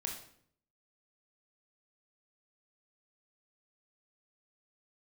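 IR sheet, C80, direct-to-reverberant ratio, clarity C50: 9.5 dB, 0.5 dB, 5.5 dB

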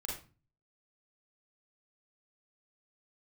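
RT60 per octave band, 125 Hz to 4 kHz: 0.65, 0.50, 0.35, 0.35, 0.30, 0.30 s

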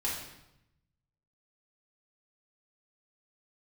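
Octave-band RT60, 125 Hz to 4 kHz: 1.5, 1.0, 0.85, 0.85, 0.80, 0.75 s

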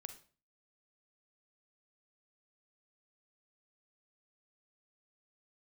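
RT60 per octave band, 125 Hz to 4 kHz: 0.50, 0.50, 0.40, 0.40, 0.35, 0.35 s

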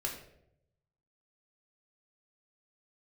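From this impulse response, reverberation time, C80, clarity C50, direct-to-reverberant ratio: 0.80 s, 9.5 dB, 6.0 dB, -1.0 dB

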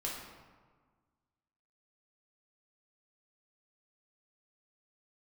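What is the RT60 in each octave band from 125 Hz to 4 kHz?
1.8, 1.8, 1.5, 1.6, 1.2, 0.85 s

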